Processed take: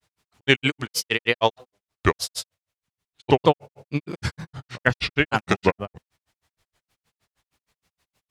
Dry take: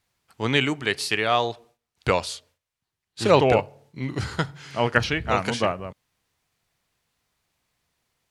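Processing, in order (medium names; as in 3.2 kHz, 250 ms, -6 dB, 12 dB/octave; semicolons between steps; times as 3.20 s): granulator 98 ms, grains 6.4 per s, pitch spread up and down by 3 st; loudness maximiser +8 dB; trim -1 dB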